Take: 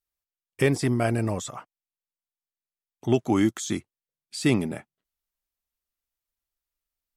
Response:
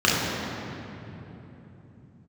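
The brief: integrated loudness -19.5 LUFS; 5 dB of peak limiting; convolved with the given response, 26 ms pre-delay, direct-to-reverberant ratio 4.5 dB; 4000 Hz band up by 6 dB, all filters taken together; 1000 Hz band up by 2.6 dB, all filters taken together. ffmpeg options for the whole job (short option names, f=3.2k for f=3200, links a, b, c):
-filter_complex "[0:a]equalizer=f=1k:t=o:g=3.5,equalizer=f=4k:t=o:g=7.5,alimiter=limit=-12.5dB:level=0:latency=1,asplit=2[a][b];[1:a]atrim=start_sample=2205,adelay=26[c];[b][c]afir=irnorm=-1:irlink=0,volume=-25dB[d];[a][d]amix=inputs=2:normalize=0,volume=6.5dB"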